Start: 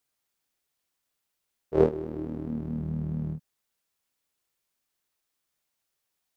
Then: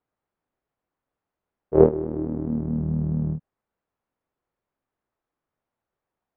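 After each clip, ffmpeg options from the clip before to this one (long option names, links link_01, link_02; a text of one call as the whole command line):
ffmpeg -i in.wav -af "lowpass=1100,volume=6.5dB" out.wav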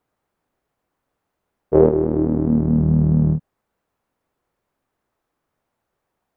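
ffmpeg -i in.wav -af "alimiter=level_in=10dB:limit=-1dB:release=50:level=0:latency=1,volume=-1dB" out.wav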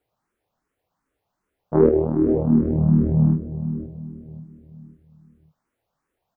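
ffmpeg -i in.wav -filter_complex "[0:a]asplit=2[link_01][link_02];[link_02]adelay=532,lowpass=frequency=910:poles=1,volume=-10.5dB,asplit=2[link_03][link_04];[link_04]adelay=532,lowpass=frequency=910:poles=1,volume=0.39,asplit=2[link_05][link_06];[link_06]adelay=532,lowpass=frequency=910:poles=1,volume=0.39,asplit=2[link_07][link_08];[link_08]adelay=532,lowpass=frequency=910:poles=1,volume=0.39[link_09];[link_03][link_05][link_07][link_09]amix=inputs=4:normalize=0[link_10];[link_01][link_10]amix=inputs=2:normalize=0,asplit=2[link_11][link_12];[link_12]afreqshift=2.6[link_13];[link_11][link_13]amix=inputs=2:normalize=1,volume=1.5dB" out.wav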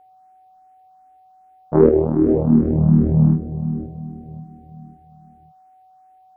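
ffmpeg -i in.wav -af "aeval=exprs='val(0)+0.00251*sin(2*PI*750*n/s)':channel_layout=same,volume=3dB" out.wav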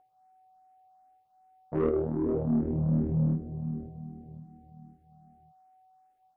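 ffmpeg -i in.wav -af "asoftclip=type=tanh:threshold=-9dB,flanger=delay=7.2:depth=1.8:regen=-60:speed=0.32:shape=triangular,volume=-6.5dB" out.wav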